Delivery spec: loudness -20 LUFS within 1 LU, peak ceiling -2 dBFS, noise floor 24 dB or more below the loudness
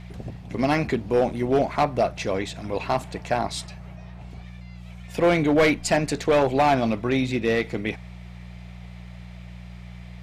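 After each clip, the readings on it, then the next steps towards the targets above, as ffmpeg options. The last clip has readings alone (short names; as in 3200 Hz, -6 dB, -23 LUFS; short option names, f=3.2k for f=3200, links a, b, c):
hum 60 Hz; harmonics up to 180 Hz; hum level -37 dBFS; loudness -23.5 LUFS; peak -11.5 dBFS; loudness target -20.0 LUFS
-> -af "bandreject=f=60:t=h:w=4,bandreject=f=120:t=h:w=4,bandreject=f=180:t=h:w=4"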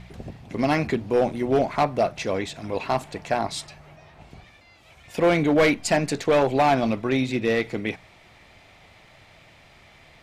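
hum none; loudness -23.5 LUFS; peak -12.0 dBFS; loudness target -20.0 LUFS
-> -af "volume=3.5dB"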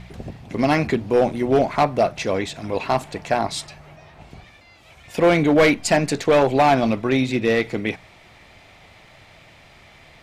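loudness -20.0 LUFS; peak -8.5 dBFS; noise floor -49 dBFS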